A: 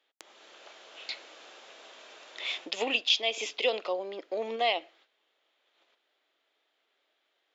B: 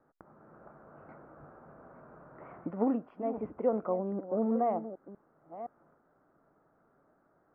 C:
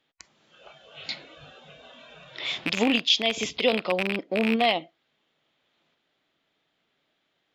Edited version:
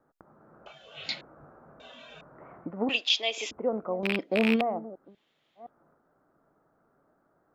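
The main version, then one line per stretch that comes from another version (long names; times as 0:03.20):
B
0:00.66–0:01.21: punch in from C
0:01.80–0:02.21: punch in from C
0:02.89–0:03.51: punch in from A
0:04.03–0:04.61: punch in from C
0:05.11–0:05.63: punch in from C, crossfade 0.16 s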